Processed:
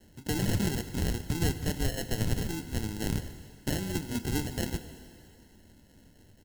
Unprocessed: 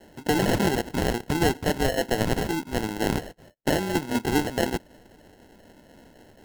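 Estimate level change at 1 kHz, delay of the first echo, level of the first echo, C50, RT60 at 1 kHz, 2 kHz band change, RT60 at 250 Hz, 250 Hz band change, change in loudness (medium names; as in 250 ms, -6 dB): -14.5 dB, 148 ms, -19.5 dB, 11.5 dB, 2.7 s, -10.0 dB, 2.4 s, -7.0 dB, -6.5 dB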